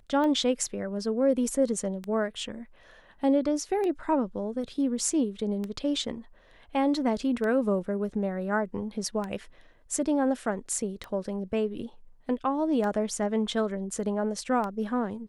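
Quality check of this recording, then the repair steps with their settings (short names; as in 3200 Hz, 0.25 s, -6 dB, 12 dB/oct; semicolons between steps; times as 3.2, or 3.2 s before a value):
tick 33 1/3 rpm -21 dBFS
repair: de-click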